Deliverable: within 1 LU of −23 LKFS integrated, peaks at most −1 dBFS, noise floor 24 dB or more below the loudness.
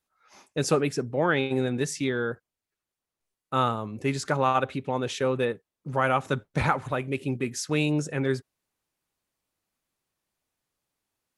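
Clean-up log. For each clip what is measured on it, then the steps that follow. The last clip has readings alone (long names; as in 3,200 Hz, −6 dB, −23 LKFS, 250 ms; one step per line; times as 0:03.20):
integrated loudness −27.5 LKFS; sample peak −7.0 dBFS; target loudness −23.0 LKFS
→ level +4.5 dB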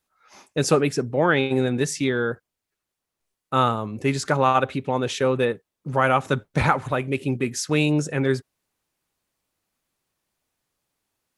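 integrated loudness −23.0 LKFS; sample peak −2.5 dBFS; background noise floor −84 dBFS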